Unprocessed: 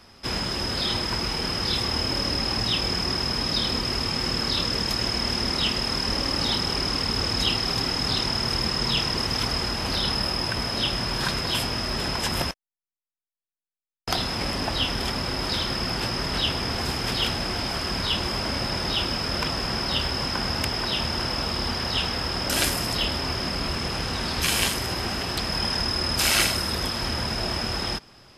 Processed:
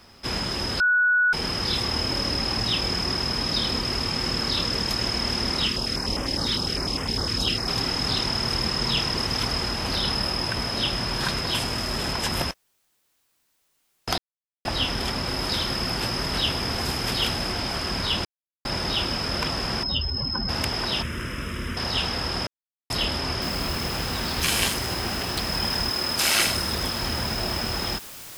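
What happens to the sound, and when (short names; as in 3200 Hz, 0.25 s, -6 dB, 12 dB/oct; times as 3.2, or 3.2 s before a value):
0.8–1.33 bleep 1470 Hz -16.5 dBFS
5.66–7.68 stepped notch 9.9 Hz 740–4200 Hz
11.57–12.13 CVSD 64 kbps
14.18–14.65 mute
15.27–17.52 high shelf 11000 Hz +7 dB
18.25–18.65 mute
19.83–20.49 spectral contrast raised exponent 2.3
21.02–21.77 fixed phaser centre 1900 Hz, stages 4
22.47–22.9 mute
23.42 noise floor step -70 dB -41 dB
25.89–26.47 HPF 220 Hz 6 dB/oct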